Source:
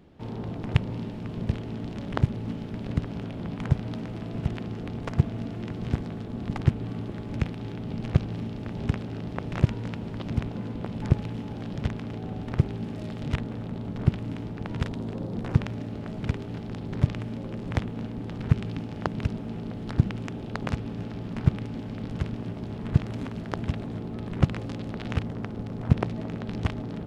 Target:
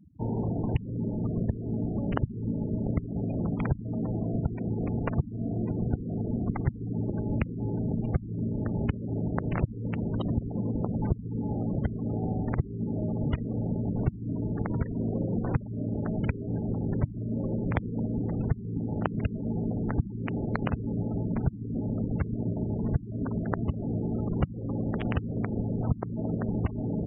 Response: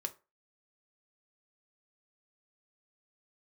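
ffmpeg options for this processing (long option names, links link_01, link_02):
-af "acompressor=threshold=-32dB:ratio=5,afftfilt=real='re*gte(hypot(re,im),0.0141)':imag='im*gte(hypot(re,im),0.0141)':win_size=1024:overlap=0.75,volume=7dB"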